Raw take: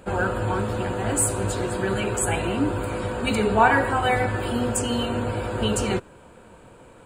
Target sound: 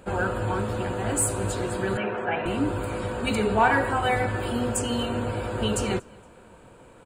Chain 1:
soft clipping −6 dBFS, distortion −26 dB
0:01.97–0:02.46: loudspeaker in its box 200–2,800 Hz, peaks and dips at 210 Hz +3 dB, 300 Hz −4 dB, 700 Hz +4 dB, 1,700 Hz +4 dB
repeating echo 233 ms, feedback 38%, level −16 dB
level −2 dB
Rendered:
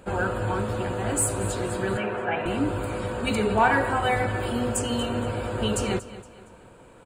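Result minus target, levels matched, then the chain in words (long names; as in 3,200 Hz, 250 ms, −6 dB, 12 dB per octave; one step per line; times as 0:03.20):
echo-to-direct +11 dB
soft clipping −6 dBFS, distortion −26 dB
0:01.97–0:02.46: loudspeaker in its box 200–2,800 Hz, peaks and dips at 210 Hz +3 dB, 300 Hz −4 dB, 700 Hz +4 dB, 1,700 Hz +4 dB
repeating echo 233 ms, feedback 38%, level −27 dB
level −2 dB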